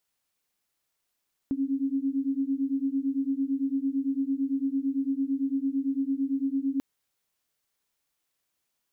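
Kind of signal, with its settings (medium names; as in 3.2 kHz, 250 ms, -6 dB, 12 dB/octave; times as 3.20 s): beating tones 268 Hz, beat 8.9 Hz, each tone -28 dBFS 5.29 s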